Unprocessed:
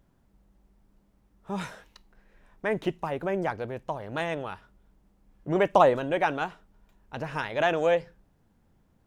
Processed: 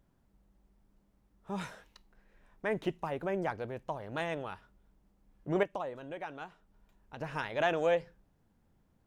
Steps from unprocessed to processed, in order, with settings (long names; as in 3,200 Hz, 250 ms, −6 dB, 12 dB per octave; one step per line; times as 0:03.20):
0:05.63–0:07.21: downward compressor 2 to 1, threshold −42 dBFS, peak gain reduction 15 dB
level −5 dB